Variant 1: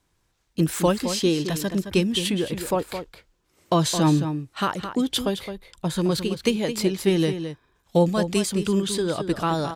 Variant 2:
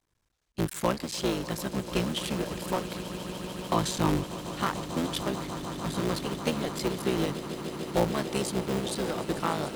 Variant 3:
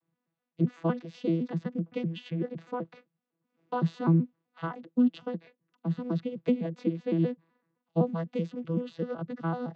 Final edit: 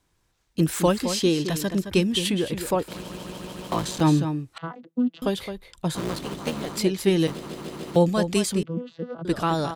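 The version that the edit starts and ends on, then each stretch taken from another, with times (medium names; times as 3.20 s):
1
2.88–4.01 s: from 2
4.58–5.22 s: from 3
5.95–6.77 s: from 2
7.27–7.96 s: from 2
8.63–9.25 s: from 3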